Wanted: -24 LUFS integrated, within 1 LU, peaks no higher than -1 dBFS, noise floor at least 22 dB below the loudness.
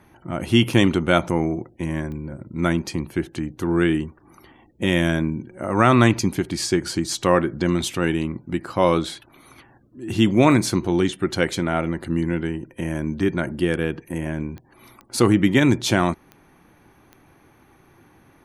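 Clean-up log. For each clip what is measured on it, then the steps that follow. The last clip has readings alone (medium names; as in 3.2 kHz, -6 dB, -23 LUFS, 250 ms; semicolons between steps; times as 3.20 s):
clicks found 6; loudness -21.5 LUFS; peak level -1.5 dBFS; loudness target -24.0 LUFS
-> de-click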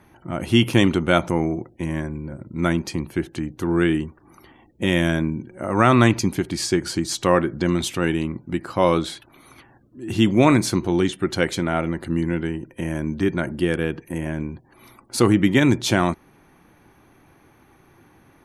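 clicks found 0; loudness -21.5 LUFS; peak level -1.5 dBFS; loudness target -24.0 LUFS
-> trim -2.5 dB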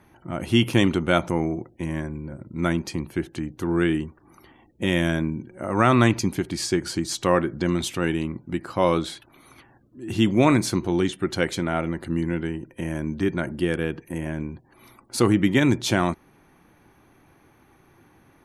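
loudness -24.0 LUFS; peak level -4.0 dBFS; noise floor -58 dBFS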